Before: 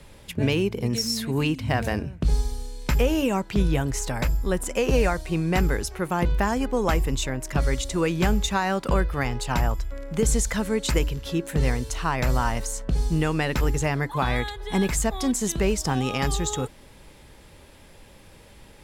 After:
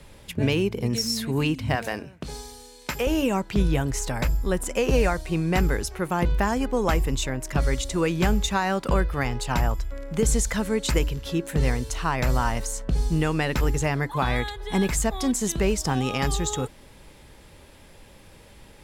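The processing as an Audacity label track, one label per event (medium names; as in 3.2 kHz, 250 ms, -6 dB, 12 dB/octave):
1.750000	3.070000	high-pass 460 Hz 6 dB/octave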